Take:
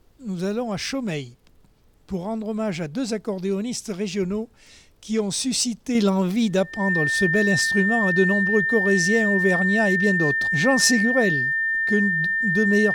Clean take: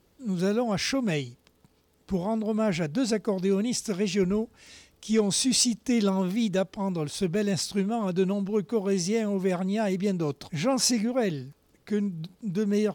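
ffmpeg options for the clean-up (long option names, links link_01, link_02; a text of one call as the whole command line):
ffmpeg -i in.wav -af "bandreject=frequency=1800:width=30,agate=range=-21dB:threshold=-45dB,asetnsamples=nb_out_samples=441:pad=0,asendcmd='5.95 volume volume -5dB',volume=0dB" out.wav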